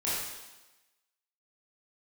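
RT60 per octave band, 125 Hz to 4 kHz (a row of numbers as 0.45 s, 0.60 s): 0.90 s, 1.1 s, 1.1 s, 1.1 s, 1.1 s, 1.1 s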